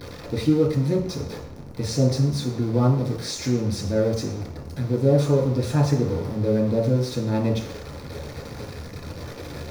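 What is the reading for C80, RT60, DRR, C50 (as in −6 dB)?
9.0 dB, 0.70 s, −4.0 dB, 5.0 dB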